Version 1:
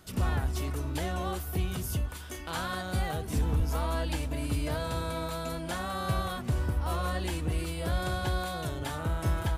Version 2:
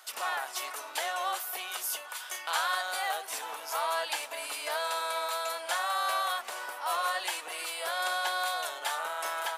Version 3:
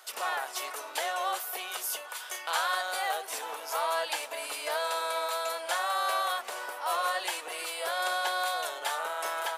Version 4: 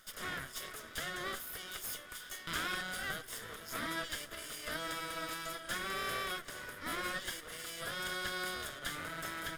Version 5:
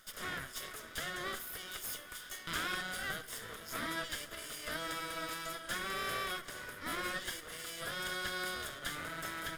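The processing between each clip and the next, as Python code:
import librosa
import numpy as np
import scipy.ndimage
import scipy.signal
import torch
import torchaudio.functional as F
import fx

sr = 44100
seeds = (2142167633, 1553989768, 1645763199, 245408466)

y1 = scipy.signal.sosfilt(scipy.signal.butter(4, 700.0, 'highpass', fs=sr, output='sos'), x)
y1 = y1 * librosa.db_to_amplitude(6.0)
y2 = fx.peak_eq(y1, sr, hz=450.0, db=5.5, octaves=0.95)
y3 = fx.lower_of_two(y2, sr, delay_ms=0.58)
y3 = y3 * librosa.db_to_amplitude(-6.0)
y4 = fx.echo_feedback(y3, sr, ms=69, feedback_pct=54, wet_db=-18.5)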